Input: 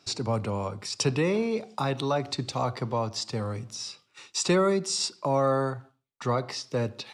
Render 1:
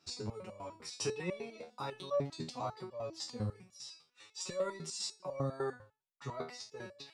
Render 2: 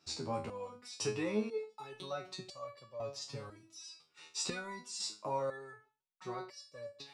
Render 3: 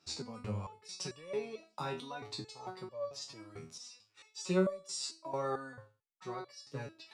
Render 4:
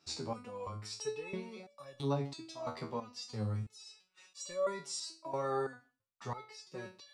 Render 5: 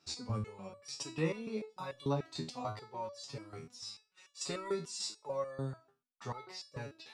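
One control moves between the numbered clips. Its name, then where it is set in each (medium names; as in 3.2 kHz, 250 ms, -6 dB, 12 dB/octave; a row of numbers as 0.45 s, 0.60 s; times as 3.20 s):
resonator arpeggio, rate: 10 Hz, 2 Hz, 4.5 Hz, 3 Hz, 6.8 Hz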